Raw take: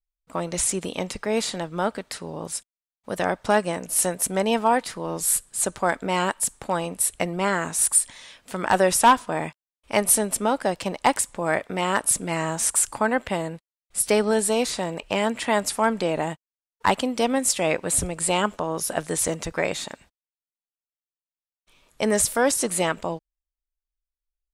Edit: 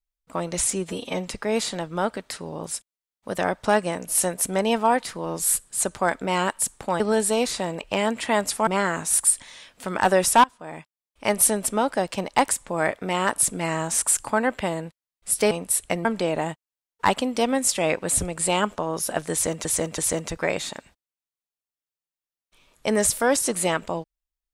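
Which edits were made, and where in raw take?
0:00.71–0:01.09: time-stretch 1.5×
0:06.81–0:07.35: swap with 0:14.19–0:15.86
0:09.12–0:10.10: fade in, from −23 dB
0:19.13–0:19.46: repeat, 3 plays

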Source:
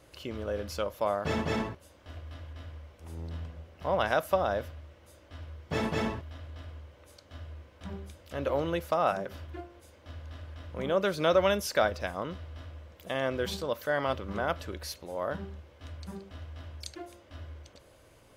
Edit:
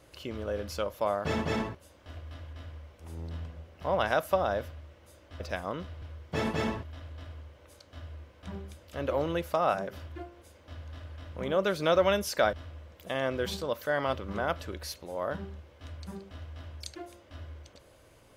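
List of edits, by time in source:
0:11.91–0:12.53: move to 0:05.40

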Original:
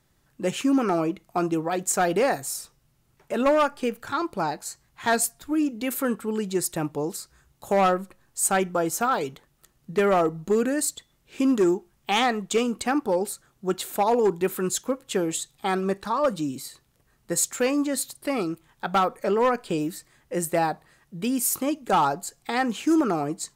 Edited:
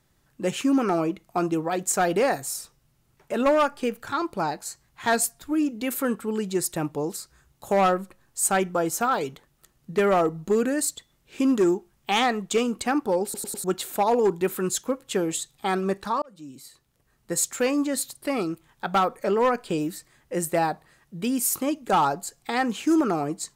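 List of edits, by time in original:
0:13.24: stutter in place 0.10 s, 4 plays
0:16.22–0:17.85: fade in equal-power

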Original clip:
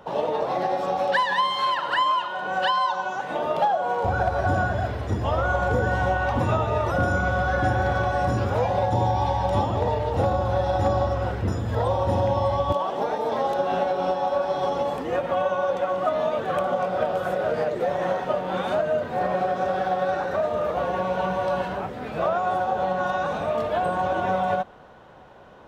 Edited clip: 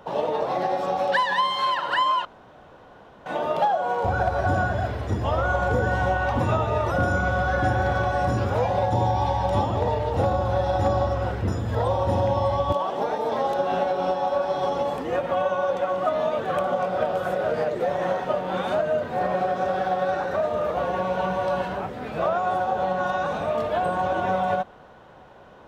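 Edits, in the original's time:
0:02.25–0:03.26: fill with room tone

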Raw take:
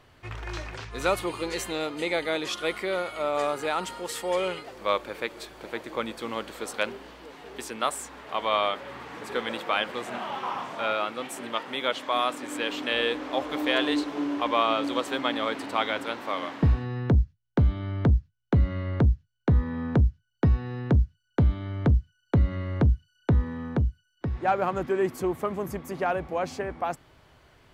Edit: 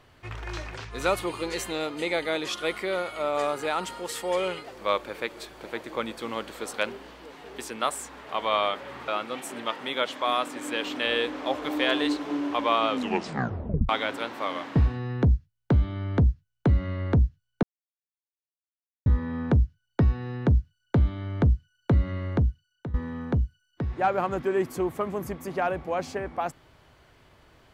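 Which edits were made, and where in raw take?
0:09.08–0:10.95: remove
0:14.76: tape stop 1.00 s
0:19.50: splice in silence 1.43 s
0:22.68–0:23.38: fade out, to −17 dB

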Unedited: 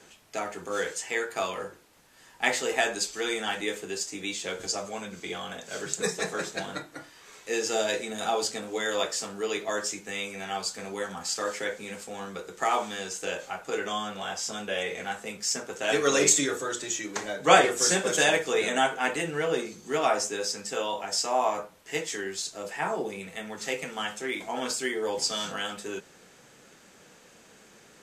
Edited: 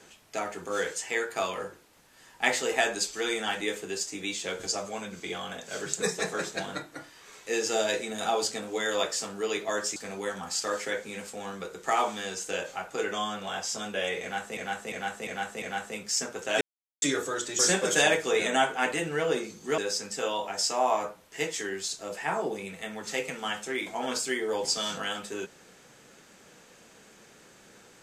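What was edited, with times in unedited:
0:09.96–0:10.70: remove
0:14.96–0:15.31: repeat, 5 plays
0:15.95–0:16.36: silence
0:16.93–0:17.81: remove
0:20.00–0:20.32: remove

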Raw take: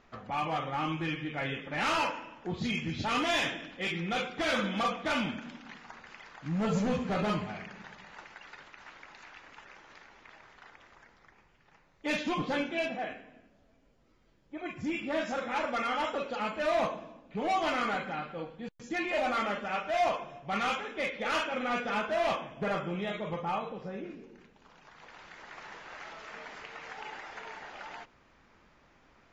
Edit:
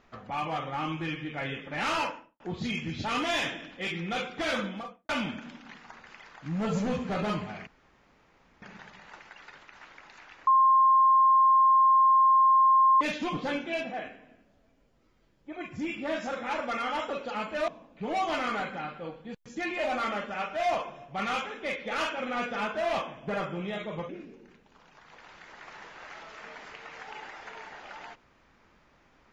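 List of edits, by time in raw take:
0:02.01–0:02.40: fade out and dull
0:04.49–0:05.09: fade out and dull
0:07.67: splice in room tone 0.95 s
0:09.52–0:12.06: beep over 1,060 Hz −17 dBFS
0:16.73–0:17.02: remove
0:23.43–0:23.99: remove

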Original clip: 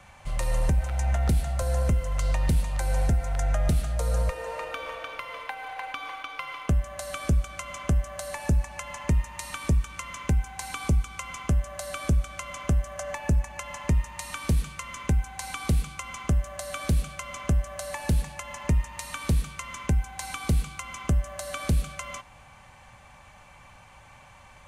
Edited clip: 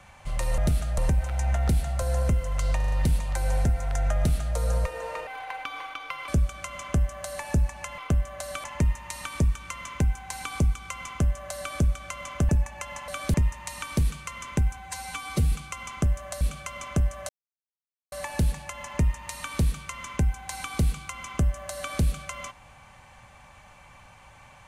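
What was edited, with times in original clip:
0:02.36: stutter 0.04 s, 5 plays
0:03.60–0:04.00: duplicate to 0:00.58
0:04.71–0:05.56: remove
0:06.57–0:07.23: move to 0:08.93
0:12.78–0:13.27: remove
0:15.29–0:15.79: time-stretch 1.5×
0:16.68–0:16.94: move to 0:13.86
0:17.82: splice in silence 0.83 s

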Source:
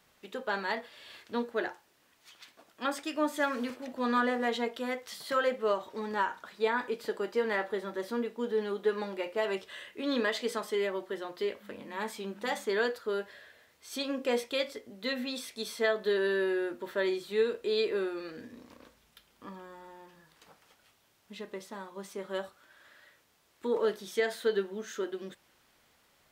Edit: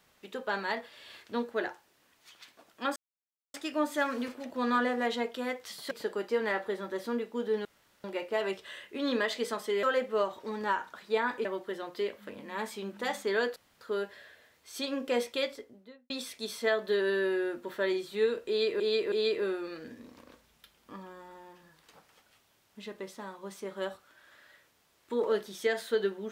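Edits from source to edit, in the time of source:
0:02.96: splice in silence 0.58 s
0:05.33–0:06.95: move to 0:10.87
0:08.69–0:09.08: fill with room tone
0:12.98: splice in room tone 0.25 s
0:14.55–0:15.27: fade out and dull
0:17.65–0:17.97: repeat, 3 plays

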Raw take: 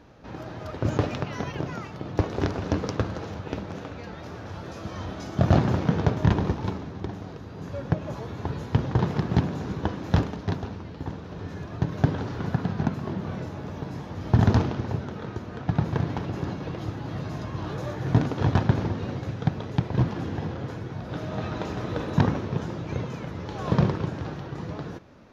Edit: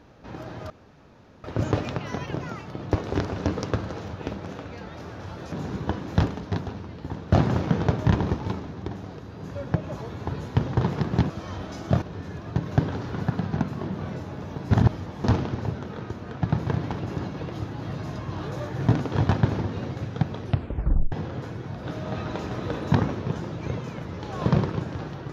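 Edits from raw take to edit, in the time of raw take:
0:00.70: splice in room tone 0.74 s
0:04.78–0:05.50: swap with 0:09.48–0:11.28
0:13.97–0:14.50: reverse
0:19.67: tape stop 0.71 s

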